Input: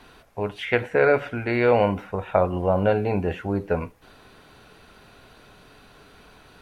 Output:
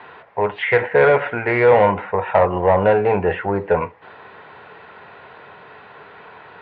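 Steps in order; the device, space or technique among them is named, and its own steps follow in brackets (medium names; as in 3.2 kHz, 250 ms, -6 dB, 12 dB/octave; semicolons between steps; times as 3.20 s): overdrive pedal into a guitar cabinet (overdrive pedal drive 18 dB, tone 1.3 kHz, clips at -5.5 dBFS; cabinet simulation 88–3500 Hz, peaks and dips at 90 Hz +7 dB, 150 Hz +4 dB, 270 Hz -7 dB, 460 Hz +4 dB, 930 Hz +7 dB, 1.9 kHz +7 dB)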